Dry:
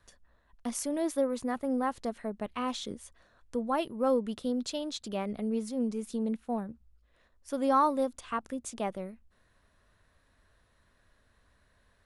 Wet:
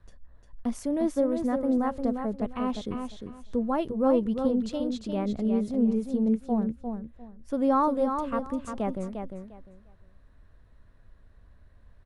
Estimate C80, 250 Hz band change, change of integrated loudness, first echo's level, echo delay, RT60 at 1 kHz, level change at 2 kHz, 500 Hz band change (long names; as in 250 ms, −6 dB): no reverb audible, +7.0 dB, +4.5 dB, −6.5 dB, 351 ms, no reverb audible, −1.5 dB, +3.5 dB